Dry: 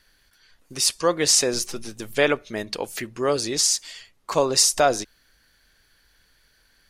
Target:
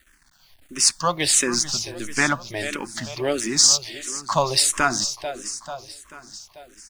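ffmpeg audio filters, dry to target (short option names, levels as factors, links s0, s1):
-filter_complex "[0:a]lowpass=f=10000:w=0.5412,lowpass=f=10000:w=1.3066,highshelf=f=7100:g=6,asplit=2[s0][s1];[s1]adynamicsmooth=sensitivity=6:basefreq=2800,volume=1[s2];[s0][s2]amix=inputs=2:normalize=0,acrusher=bits=8:mix=0:aa=0.000001,equalizer=f=470:w=3.2:g=-13.5,asplit=2[s3][s4];[s4]aecho=0:1:440|880|1320|1760|2200|2640:0.224|0.128|0.0727|0.0415|0.0236|0.0135[s5];[s3][s5]amix=inputs=2:normalize=0,asplit=2[s6][s7];[s7]afreqshift=-1.5[s8];[s6][s8]amix=inputs=2:normalize=1"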